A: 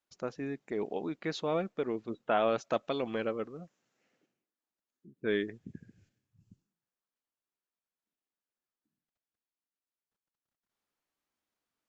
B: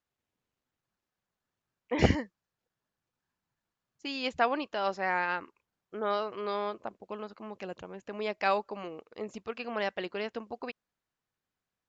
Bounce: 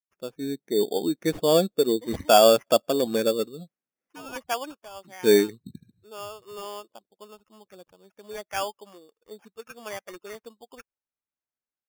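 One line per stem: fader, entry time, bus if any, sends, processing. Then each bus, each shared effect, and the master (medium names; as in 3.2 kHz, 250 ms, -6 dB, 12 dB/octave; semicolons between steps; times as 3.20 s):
+1.5 dB, 0.00 s, no send, spectral contrast expander 1.5:1
-9.5 dB, 0.10 s, no send, expander on every frequency bin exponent 1.5; auto duck -10 dB, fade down 0.50 s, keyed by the first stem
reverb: none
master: level rider gain up to 9 dB; sample-and-hold 11×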